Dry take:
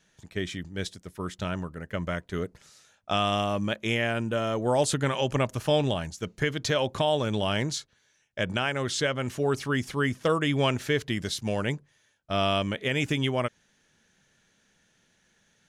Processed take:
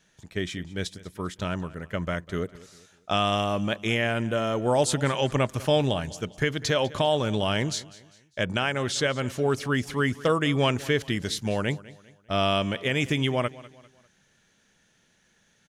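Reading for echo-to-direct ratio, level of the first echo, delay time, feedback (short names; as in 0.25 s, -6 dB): -19.0 dB, -19.5 dB, 0.199 s, 40%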